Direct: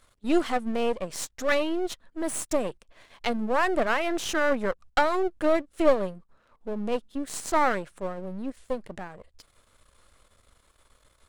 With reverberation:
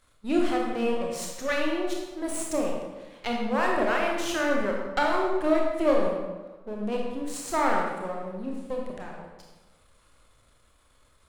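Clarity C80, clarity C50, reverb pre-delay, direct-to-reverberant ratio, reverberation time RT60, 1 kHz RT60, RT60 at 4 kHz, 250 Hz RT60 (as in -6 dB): 3.5 dB, 1.5 dB, 24 ms, -1.5 dB, 1.3 s, 1.2 s, 0.85 s, 1.4 s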